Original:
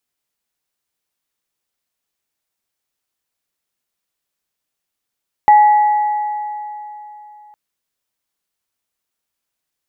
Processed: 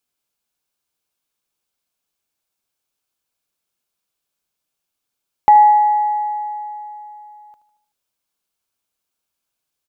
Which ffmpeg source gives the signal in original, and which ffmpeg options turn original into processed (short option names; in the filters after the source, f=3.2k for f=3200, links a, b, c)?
-f lavfi -i "aevalsrc='0.631*pow(10,-3*t/3.32)*sin(2*PI*840*t)+0.0891*pow(10,-3*t/2.67)*sin(2*PI*1950*t)':d=2.06:s=44100"
-af "bandreject=f=1.9k:w=6.8,aecho=1:1:76|152|228|304|380:0.178|0.0996|0.0558|0.0312|0.0175"